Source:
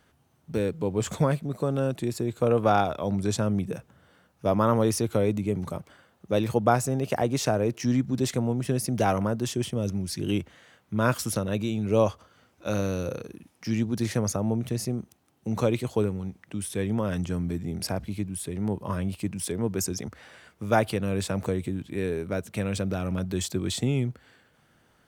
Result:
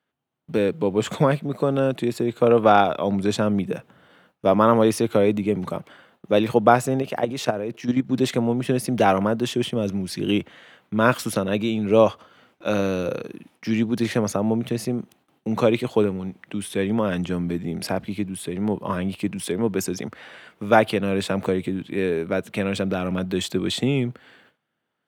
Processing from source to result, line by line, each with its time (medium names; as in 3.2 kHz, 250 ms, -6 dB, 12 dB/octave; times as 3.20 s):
7.02–8.11 s: level held to a coarse grid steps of 11 dB
whole clip: high-pass 170 Hz 12 dB/octave; resonant high shelf 4.4 kHz -6.5 dB, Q 1.5; gate with hold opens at -51 dBFS; trim +6.5 dB